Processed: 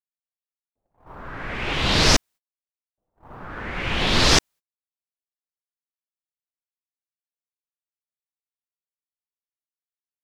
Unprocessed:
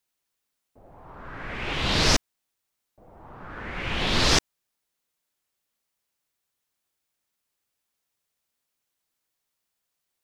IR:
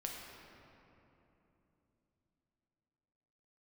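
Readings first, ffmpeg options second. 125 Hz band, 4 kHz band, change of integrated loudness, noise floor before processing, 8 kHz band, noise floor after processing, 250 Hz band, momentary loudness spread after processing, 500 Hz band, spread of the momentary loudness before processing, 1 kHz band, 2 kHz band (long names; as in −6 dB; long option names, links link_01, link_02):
+4.0 dB, +4.0 dB, +4.5 dB, −82 dBFS, +4.0 dB, below −85 dBFS, +4.0 dB, 18 LU, +4.0 dB, 18 LU, +4.0 dB, +4.0 dB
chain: -af "agate=range=-34dB:threshold=-45dB:ratio=16:detection=peak,volume=4dB"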